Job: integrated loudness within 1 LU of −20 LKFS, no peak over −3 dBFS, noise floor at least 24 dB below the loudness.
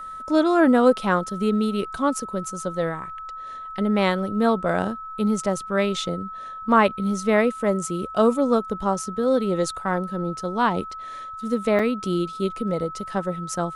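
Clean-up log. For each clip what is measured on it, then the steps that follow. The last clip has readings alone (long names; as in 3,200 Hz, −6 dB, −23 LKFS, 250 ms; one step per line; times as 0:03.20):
number of dropouts 1; longest dropout 4.2 ms; interfering tone 1,300 Hz; level of the tone −33 dBFS; integrated loudness −23.0 LKFS; sample peak −5.5 dBFS; target loudness −20.0 LKFS
→ repair the gap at 0:11.79, 4.2 ms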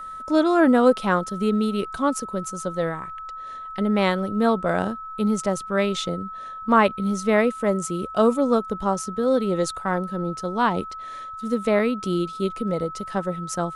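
number of dropouts 0; interfering tone 1,300 Hz; level of the tone −33 dBFS
→ notch filter 1,300 Hz, Q 30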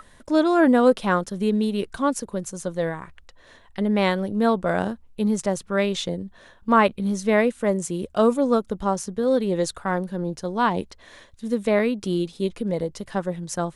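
interfering tone none found; integrated loudness −23.5 LKFS; sample peak −5.5 dBFS; target loudness −20.0 LKFS
→ level +3.5 dB
brickwall limiter −3 dBFS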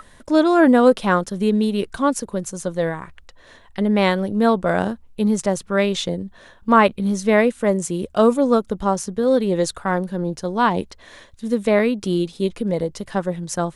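integrated loudness −20.0 LKFS; sample peak −3.0 dBFS; background noise floor −49 dBFS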